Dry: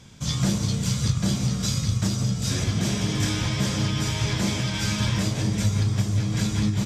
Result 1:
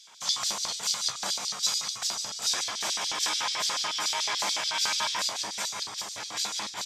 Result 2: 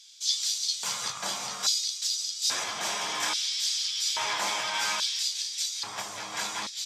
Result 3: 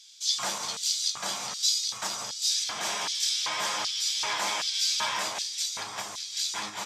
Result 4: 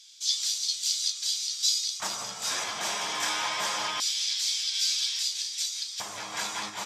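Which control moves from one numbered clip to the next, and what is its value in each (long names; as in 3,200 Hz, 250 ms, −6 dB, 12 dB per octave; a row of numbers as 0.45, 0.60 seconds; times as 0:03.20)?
auto-filter high-pass, speed: 6.9, 0.6, 1.3, 0.25 Hertz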